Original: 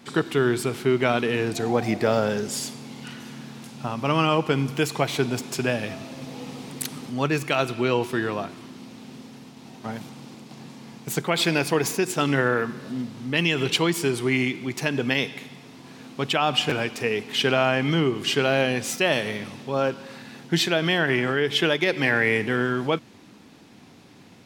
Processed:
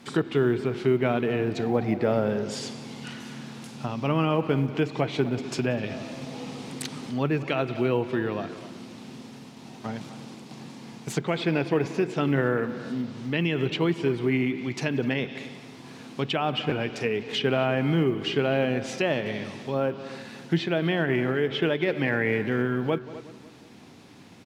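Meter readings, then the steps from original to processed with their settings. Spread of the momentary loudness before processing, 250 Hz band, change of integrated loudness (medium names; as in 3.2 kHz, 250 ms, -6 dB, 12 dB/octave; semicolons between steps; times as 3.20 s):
18 LU, -0.5 dB, -3.0 dB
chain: dynamic bell 1.2 kHz, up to -6 dB, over -37 dBFS, Q 0.71; low-pass that closes with the level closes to 2.1 kHz, closed at -21.5 dBFS; on a send: filtered feedback delay 183 ms, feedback 56%, low-pass 2.5 kHz, level -17 dB; on the sum: short-mantissa float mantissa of 6-bit; speakerphone echo 250 ms, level -14 dB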